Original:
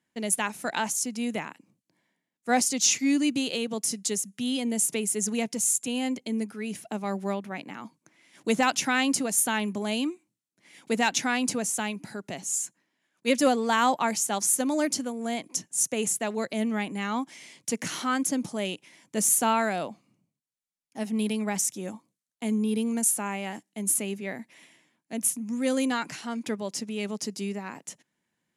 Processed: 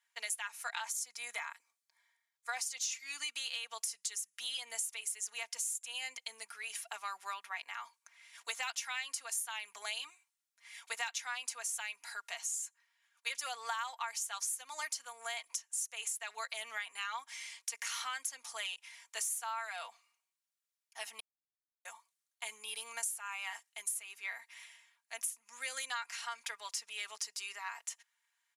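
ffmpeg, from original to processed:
-filter_complex "[0:a]asettb=1/sr,asplit=3[s0][s1][s2];[s0]atrim=end=0.844[s3];[s1]atrim=start=0.84:end=2.52,asetpts=PTS-STARTPTS,afade=t=in:d=0.004:c=qsin,afade=t=out:st=1.676:d=0.004:c=qsin,bandreject=f=2800:w=6.8[s4];[s2]atrim=start=2.516[s5];[s3][s4]acrossfade=d=0.004:c1=hsin:c2=qsin[s6];[s6][s5]acrossfade=d=0.004:c1=qsin:c2=hsin,asplit=3[s7][s8][s9];[s7]atrim=end=21.2,asetpts=PTS-STARTPTS,afade=t=out:st=21.196:d=0.004:c=hsin[s10];[s8]atrim=start=21.2:end=21.85,asetpts=PTS-STARTPTS,volume=0[s11];[s9]atrim=start=21.85,asetpts=PTS-STARTPTS,afade=t=in:d=0.004:c=hsin[s12];[s10][s11][s12]concat=n=3:v=0:a=1,highpass=f=1000:w=0.5412,highpass=f=1000:w=1.3066,aecho=1:1:4.3:0.63,acompressor=threshold=0.0158:ratio=6"

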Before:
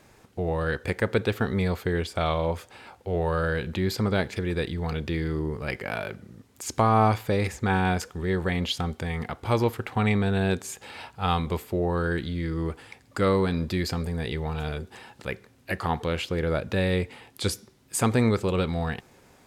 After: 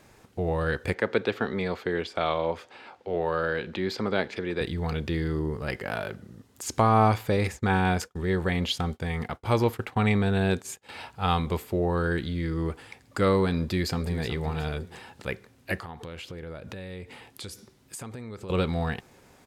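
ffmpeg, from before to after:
-filter_complex "[0:a]asettb=1/sr,asplit=3[s0][s1][s2];[s0]atrim=end=0.944[s3];[s1]atrim=start=0.94:end=4.61,asetpts=PTS-STARTPTS,afade=t=in:d=0.004:c=qsin,afade=t=out:st=3.666:d=0.004:c=qsin,acrossover=split=200 5800:gain=0.2 1 0.158[s4][s5][s6];[s4][s5][s6]amix=inputs=3:normalize=0[s7];[s2]atrim=start=4.606[s8];[s3][s7]acrossfade=d=0.004:c1=hsin:c2=qsin[s9];[s9][s8]acrossfade=d=0.004:c1=qsin:c2=hsin,asettb=1/sr,asplit=3[s10][s11][s12];[s10]atrim=end=5.114[s13];[s11]atrim=start=5.11:end=6.68,asetpts=PTS-STARTPTS,afade=t=in:d=0.004:c=qsin,afade=t=out:st=1.566:d=0.004:c=qsin,bandreject=f=2300:w=9.7[s14];[s12]atrim=start=6.676[s15];[s13][s14]acrossfade=d=0.004:c1=hsin:c2=qsin[s16];[s16][s15]acrossfade=d=0.004:c1=qsin:c2=hsin,asettb=1/sr,asplit=3[s17][s18][s19];[s17]atrim=end=7.374[s20];[s18]atrim=start=7.37:end=10.89,asetpts=PTS-STARTPTS,afade=t=in:d=0.004:c=qsin,afade=t=out:st=3.516:d=0.004:c=qsin,agate=range=0.0224:threshold=0.0158:ratio=3:release=100:detection=peak[s21];[s19]atrim=start=10.886[s22];[s20][s21]acrossfade=d=0.004:c1=hsin:c2=qsin[s23];[s23][s22]acrossfade=d=0.004:c1=qsin:c2=hsin,asplit=2[s24][s25];[s25]afade=t=in:st=13.55:d=0.01,afade=t=out:st=14.25:d=0.01,aecho=0:1:370|740|1110:0.266073|0.0798218|0.0239465[s26];[s24][s26]amix=inputs=2:normalize=0,asettb=1/sr,asplit=3[s27][s28][s29];[s27]atrim=end=15.794[s30];[s28]atrim=start=15.79:end=18.5,asetpts=PTS-STARTPTS,afade=t=in:d=0.004:c=qsin,afade=t=out:st=2.706:d=0.004:c=qsin,acompressor=threshold=0.0158:ratio=8:attack=3.2:release=140:knee=1:detection=peak[s31];[s29]atrim=start=18.496[s32];[s30][s31]acrossfade=d=0.004:c1=hsin:c2=qsin[s33];[s33][s32]acrossfade=d=0.004:c1=qsin:c2=hsin"

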